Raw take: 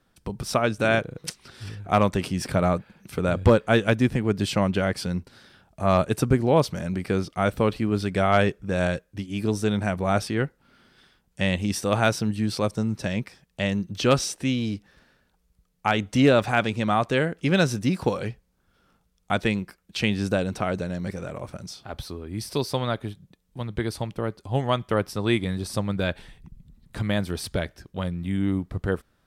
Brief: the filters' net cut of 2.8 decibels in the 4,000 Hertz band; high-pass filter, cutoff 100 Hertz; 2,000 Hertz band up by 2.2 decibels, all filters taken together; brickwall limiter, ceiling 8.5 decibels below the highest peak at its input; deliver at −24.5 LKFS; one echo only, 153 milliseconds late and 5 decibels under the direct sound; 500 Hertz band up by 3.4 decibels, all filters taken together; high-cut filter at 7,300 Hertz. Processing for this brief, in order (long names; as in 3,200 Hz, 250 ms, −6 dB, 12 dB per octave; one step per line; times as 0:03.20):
high-pass filter 100 Hz
low-pass filter 7,300 Hz
parametric band 500 Hz +4 dB
parametric band 2,000 Hz +4 dB
parametric band 4,000 Hz −5 dB
brickwall limiter −11 dBFS
single-tap delay 153 ms −5 dB
level +0.5 dB